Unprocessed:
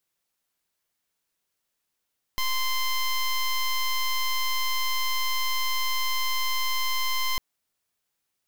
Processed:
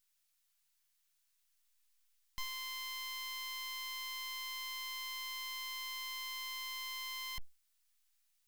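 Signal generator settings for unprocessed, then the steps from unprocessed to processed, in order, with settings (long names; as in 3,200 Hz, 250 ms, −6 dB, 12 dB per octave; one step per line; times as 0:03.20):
pulse wave 1,040 Hz, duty 12% −25 dBFS 5.00 s
log-companded quantiser 8 bits
guitar amp tone stack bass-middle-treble 10-0-10
hard clipping −37.5 dBFS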